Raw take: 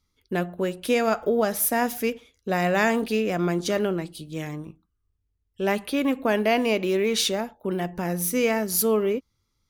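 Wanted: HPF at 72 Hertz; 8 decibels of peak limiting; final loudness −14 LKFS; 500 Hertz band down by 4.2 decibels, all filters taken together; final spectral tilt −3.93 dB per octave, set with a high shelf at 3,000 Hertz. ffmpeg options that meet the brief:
ffmpeg -i in.wav -af "highpass=72,equalizer=frequency=500:width_type=o:gain=-5.5,highshelf=frequency=3000:gain=3,volume=13dB,alimiter=limit=-3dB:level=0:latency=1" out.wav

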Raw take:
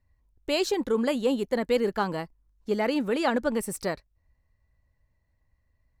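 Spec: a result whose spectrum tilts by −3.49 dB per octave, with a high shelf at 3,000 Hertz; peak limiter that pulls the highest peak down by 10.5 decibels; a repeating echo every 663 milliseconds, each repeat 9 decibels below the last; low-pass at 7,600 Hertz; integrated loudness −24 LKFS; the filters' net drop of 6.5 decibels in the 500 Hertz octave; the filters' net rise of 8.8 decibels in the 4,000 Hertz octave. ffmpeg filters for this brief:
ffmpeg -i in.wav -af "lowpass=7600,equalizer=frequency=500:width_type=o:gain=-8,highshelf=frequency=3000:gain=4.5,equalizer=frequency=4000:width_type=o:gain=8,alimiter=limit=-21dB:level=0:latency=1,aecho=1:1:663|1326|1989|2652:0.355|0.124|0.0435|0.0152,volume=8dB" out.wav

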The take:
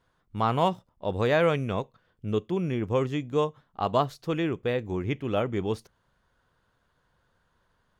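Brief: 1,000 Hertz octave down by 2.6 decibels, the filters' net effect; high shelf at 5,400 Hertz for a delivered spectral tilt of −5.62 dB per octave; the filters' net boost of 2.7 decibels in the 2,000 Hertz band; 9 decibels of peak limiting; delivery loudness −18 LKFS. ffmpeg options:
ffmpeg -i in.wav -af "equalizer=frequency=1000:width_type=o:gain=-4.5,equalizer=frequency=2000:width_type=o:gain=4,highshelf=frequency=5400:gain=5.5,volume=14.5dB,alimiter=limit=-5.5dB:level=0:latency=1" out.wav

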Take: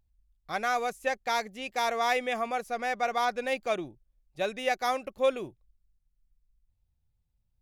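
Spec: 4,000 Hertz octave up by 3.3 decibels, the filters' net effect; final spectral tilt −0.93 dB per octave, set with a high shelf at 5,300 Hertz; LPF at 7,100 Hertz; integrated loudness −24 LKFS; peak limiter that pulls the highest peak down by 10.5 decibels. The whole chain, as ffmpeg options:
ffmpeg -i in.wav -af "lowpass=7100,equalizer=frequency=4000:width_type=o:gain=6.5,highshelf=frequency=5300:gain=-5.5,volume=11.5dB,alimiter=limit=-13.5dB:level=0:latency=1" out.wav

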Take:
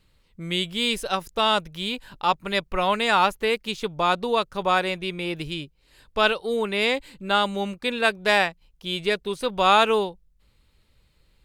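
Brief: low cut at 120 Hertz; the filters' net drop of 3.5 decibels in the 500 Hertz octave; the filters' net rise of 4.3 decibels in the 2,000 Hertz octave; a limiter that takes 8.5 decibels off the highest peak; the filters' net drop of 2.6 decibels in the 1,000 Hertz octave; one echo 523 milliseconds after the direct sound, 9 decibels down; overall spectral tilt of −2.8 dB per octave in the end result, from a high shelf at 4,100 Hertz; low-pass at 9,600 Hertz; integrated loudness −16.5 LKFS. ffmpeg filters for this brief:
ffmpeg -i in.wav -af "highpass=120,lowpass=9600,equalizer=frequency=500:width_type=o:gain=-3.5,equalizer=frequency=1000:width_type=o:gain=-4.5,equalizer=frequency=2000:width_type=o:gain=5.5,highshelf=frequency=4100:gain=7,alimiter=limit=-11dB:level=0:latency=1,aecho=1:1:523:0.355,volume=8dB" out.wav

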